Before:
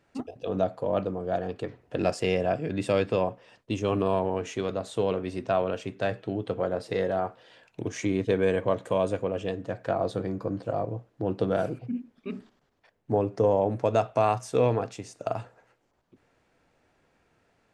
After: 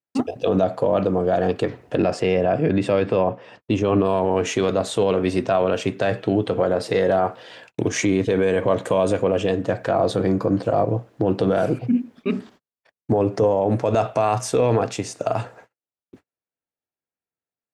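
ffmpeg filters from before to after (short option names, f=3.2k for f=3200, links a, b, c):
-filter_complex "[0:a]asettb=1/sr,asplit=3[a][b][c];[a]atrim=end=1.974[d];[b]atrim=start=1.97:end=4.05,asetpts=PTS-STARTPTS,afade=t=in:d=0.004:c=qsin,afade=t=out:st=2.076:d=0.004:c=qsin,aemphasis=mode=reproduction:type=75kf[e];[c]atrim=start=4.046[f];[d][e]acrossfade=d=0.004:c1=hsin:c2=qsin[g];[g][f]acrossfade=d=0.004:c1=qsin:c2=hsin,agate=range=-43dB:threshold=-58dB:ratio=16:detection=peak,highpass=f=93:p=1,alimiter=level_in=21.5dB:limit=-1dB:release=50:level=0:latency=1,volume=-8.5dB"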